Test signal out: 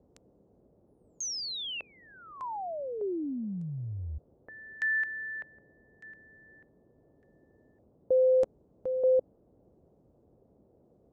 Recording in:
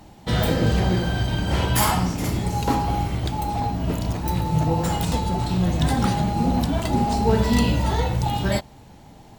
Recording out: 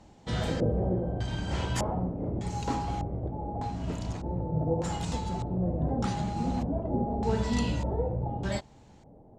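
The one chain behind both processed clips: LFO low-pass square 0.83 Hz 550–7200 Hz; high shelf 5000 Hz -8 dB; band noise 37–540 Hz -55 dBFS; gain -9 dB

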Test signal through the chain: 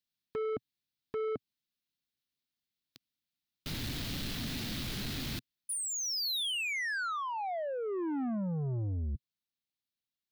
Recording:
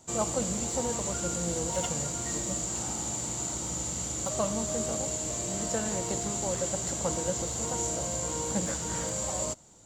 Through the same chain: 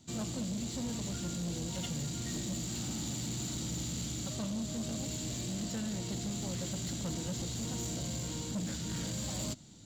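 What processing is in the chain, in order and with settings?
graphic EQ 125/250/500/1000/4000/8000 Hz +6/+8/-8/-8/+9/-8 dB; vocal rider within 4 dB 0.5 s; soft clip -29 dBFS; gain -3 dB

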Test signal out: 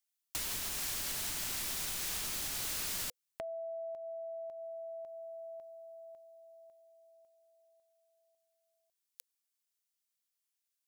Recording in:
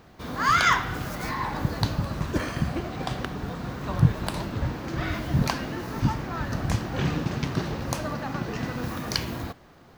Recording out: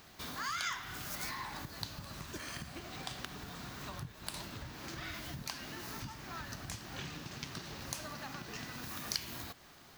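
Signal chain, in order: compressor 4:1, threshold -36 dBFS; pre-emphasis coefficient 0.9; notch 500 Hz, Q 12; overloaded stage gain 26.5 dB; high shelf 8200 Hz -8.5 dB; gain +10.5 dB

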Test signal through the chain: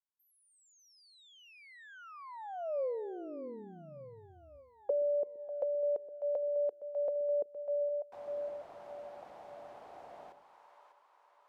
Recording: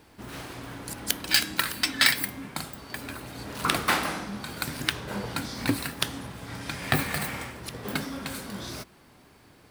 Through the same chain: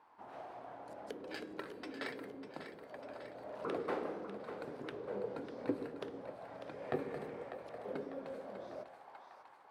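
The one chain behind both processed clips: split-band echo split 400 Hz, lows 0.124 s, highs 0.597 s, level -10 dB; auto-wah 450–1000 Hz, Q 4, down, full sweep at -28.5 dBFS; gain +1.5 dB

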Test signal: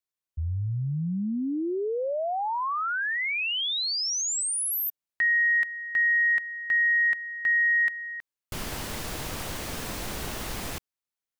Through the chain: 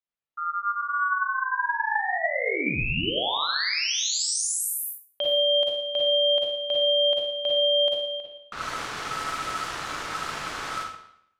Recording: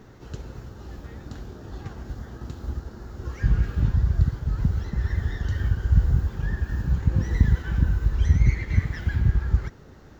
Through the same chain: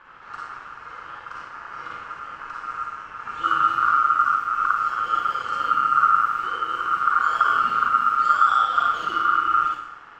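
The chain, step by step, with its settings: Schroeder reverb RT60 0.72 s, DRR -3.5 dB; low-pass opened by the level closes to 2800 Hz, open at -17.5 dBFS; ring modulator 1300 Hz

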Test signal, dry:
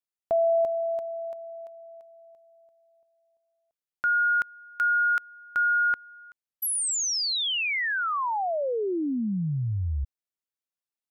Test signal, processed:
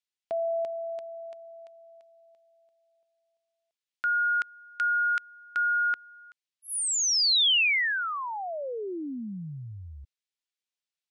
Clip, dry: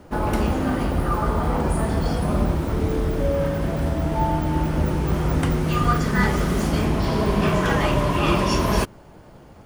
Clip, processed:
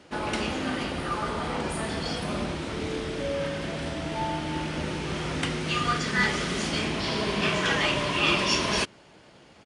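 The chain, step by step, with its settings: downsampling 22050 Hz; weighting filter D; gain -6 dB

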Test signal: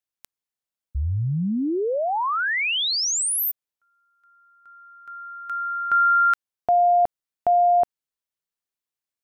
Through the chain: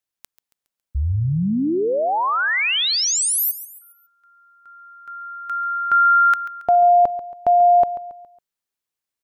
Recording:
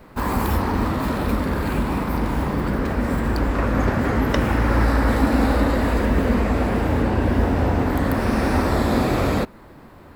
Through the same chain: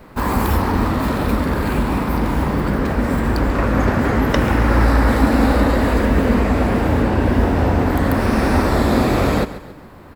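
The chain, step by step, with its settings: feedback echo 0.138 s, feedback 42%, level -14.5 dB; gain +3.5 dB

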